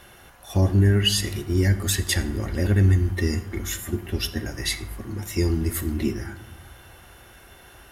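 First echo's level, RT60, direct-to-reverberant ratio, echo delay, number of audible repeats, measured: no echo audible, 0.80 s, 10.0 dB, no echo audible, no echo audible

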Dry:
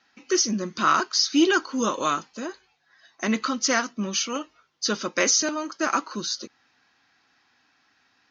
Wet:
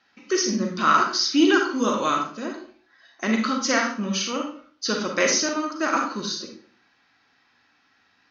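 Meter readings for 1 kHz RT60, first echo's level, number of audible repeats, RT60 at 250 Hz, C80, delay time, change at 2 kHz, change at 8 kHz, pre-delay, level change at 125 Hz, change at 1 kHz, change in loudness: 0.45 s, no echo audible, no echo audible, 0.55 s, 9.5 dB, no echo audible, +2.0 dB, can't be measured, 35 ms, +2.5 dB, +2.5 dB, +1.0 dB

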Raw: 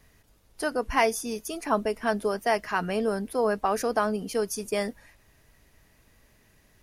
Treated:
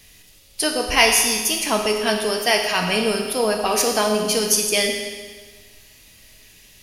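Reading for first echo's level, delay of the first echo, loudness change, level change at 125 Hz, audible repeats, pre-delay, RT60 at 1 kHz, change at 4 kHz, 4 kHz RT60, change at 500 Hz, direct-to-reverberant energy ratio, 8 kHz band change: no echo audible, no echo audible, +9.0 dB, +5.5 dB, no echo audible, 10 ms, 1.5 s, +19.0 dB, 1.5 s, +5.5 dB, 1.5 dB, +17.5 dB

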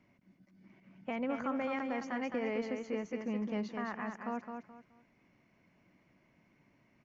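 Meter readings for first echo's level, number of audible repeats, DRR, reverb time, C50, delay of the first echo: −6.0 dB, 3, no reverb audible, no reverb audible, no reverb audible, 213 ms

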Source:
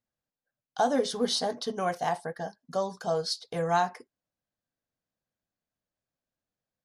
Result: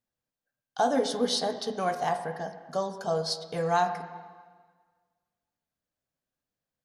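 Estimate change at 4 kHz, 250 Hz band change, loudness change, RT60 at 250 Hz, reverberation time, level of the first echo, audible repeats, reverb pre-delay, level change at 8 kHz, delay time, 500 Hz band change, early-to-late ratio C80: 0.0 dB, +0.5 dB, +0.5 dB, 1.6 s, 1.6 s, no echo audible, no echo audible, 7 ms, 0.0 dB, no echo audible, +0.5 dB, 11.0 dB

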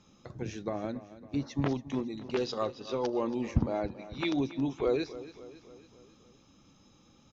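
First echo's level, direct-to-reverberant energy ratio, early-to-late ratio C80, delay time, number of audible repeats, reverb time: −15.5 dB, no reverb audible, no reverb audible, 277 ms, 4, no reverb audible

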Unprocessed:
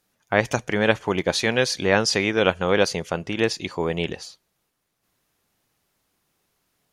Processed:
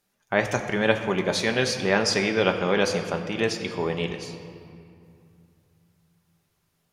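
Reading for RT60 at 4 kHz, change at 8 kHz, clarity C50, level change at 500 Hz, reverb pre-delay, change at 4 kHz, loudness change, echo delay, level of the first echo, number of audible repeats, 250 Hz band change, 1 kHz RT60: 1.5 s, −2.5 dB, 8.0 dB, −2.0 dB, 5 ms, −2.5 dB, −2.0 dB, no echo audible, no echo audible, no echo audible, −1.5 dB, 2.5 s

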